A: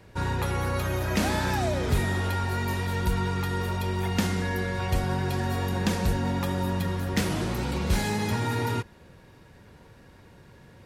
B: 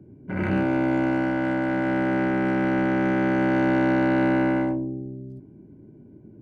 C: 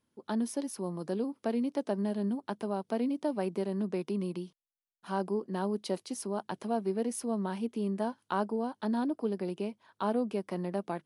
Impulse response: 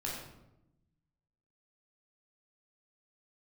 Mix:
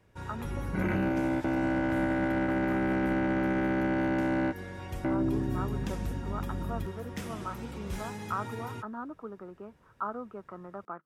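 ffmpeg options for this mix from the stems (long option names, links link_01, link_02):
-filter_complex "[0:a]equalizer=frequency=4300:width_type=o:width=0.22:gain=-8,volume=-12.5dB[link_01];[1:a]aeval=exprs='val(0)+0.0141*(sin(2*PI*50*n/s)+sin(2*PI*2*50*n/s)/2+sin(2*PI*3*50*n/s)/3+sin(2*PI*4*50*n/s)/4+sin(2*PI*5*50*n/s)/5)':channel_layout=same,adelay=450,volume=2.5dB[link_02];[2:a]lowpass=frequency=1300:width_type=q:width=14,lowshelf=frequency=100:gain=-9.5,volume=-10dB,asplit=2[link_03][link_04];[link_04]apad=whole_len=302763[link_05];[link_02][link_05]sidechaingate=range=-33dB:threshold=-55dB:ratio=16:detection=peak[link_06];[link_01][link_06][link_03]amix=inputs=3:normalize=0,alimiter=limit=-20.5dB:level=0:latency=1:release=98"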